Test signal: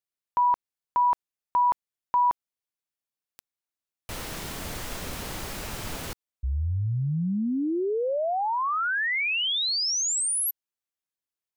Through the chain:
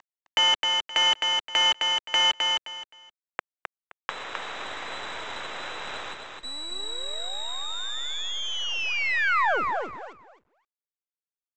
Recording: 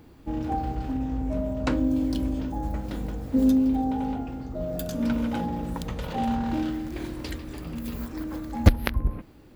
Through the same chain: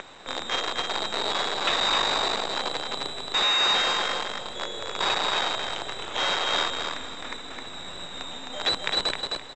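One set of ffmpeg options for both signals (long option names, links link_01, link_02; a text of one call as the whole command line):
ffmpeg -i in.wav -filter_complex "[0:a]lowpass=frequency=3400:width_type=q:width=0.5098,lowpass=frequency=3400:width_type=q:width=0.6013,lowpass=frequency=3400:width_type=q:width=0.9,lowpass=frequency=3400:width_type=q:width=2.563,afreqshift=-4000,asplit=2[link_01][link_02];[link_02]acompressor=mode=upward:threshold=-34dB:ratio=2.5:attack=63:release=88:knee=2.83:detection=peak,volume=-2dB[link_03];[link_01][link_03]amix=inputs=2:normalize=0,asoftclip=type=tanh:threshold=-12dB,aresample=16000,acrusher=bits=4:dc=4:mix=0:aa=0.000001,aresample=44100,acrossover=split=370 2200:gain=0.158 1 0.112[link_04][link_05][link_06];[link_04][link_05][link_06]amix=inputs=3:normalize=0,aecho=1:1:261|522|783:0.631|0.139|0.0305,volume=5.5dB" out.wav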